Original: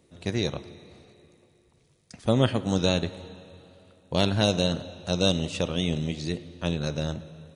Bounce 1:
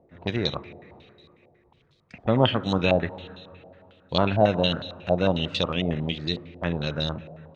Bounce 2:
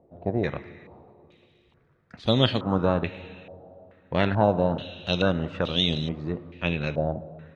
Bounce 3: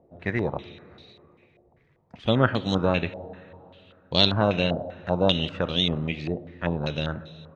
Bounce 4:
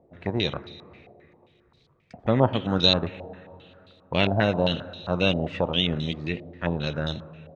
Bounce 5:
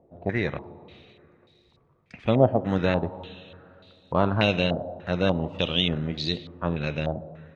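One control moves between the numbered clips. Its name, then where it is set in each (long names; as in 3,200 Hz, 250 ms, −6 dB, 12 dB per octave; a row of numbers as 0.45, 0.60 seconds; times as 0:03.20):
low-pass on a step sequencer, speed: 11, 2.3, 5.1, 7.5, 3.4 Hertz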